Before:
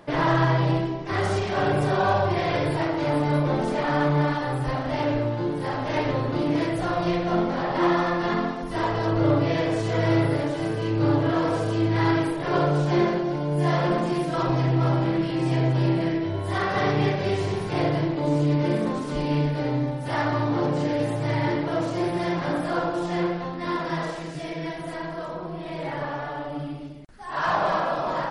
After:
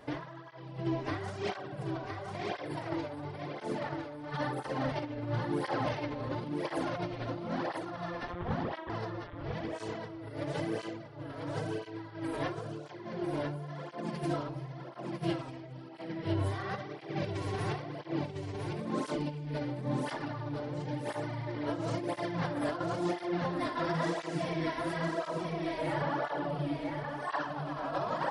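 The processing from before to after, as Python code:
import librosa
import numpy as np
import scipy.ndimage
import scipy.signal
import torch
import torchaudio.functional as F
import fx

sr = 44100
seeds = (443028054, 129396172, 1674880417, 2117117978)

p1 = fx.lpc_vocoder(x, sr, seeds[0], excitation='pitch_kept', order=8, at=(8.27, 8.9))
p2 = fx.over_compress(p1, sr, threshold_db=-28.0, ratio=-0.5)
p3 = p2 + fx.echo_single(p2, sr, ms=1001, db=-5.0, dry=0)
p4 = fx.flanger_cancel(p3, sr, hz=0.97, depth_ms=6.1)
y = p4 * librosa.db_to_amplitude(-5.0)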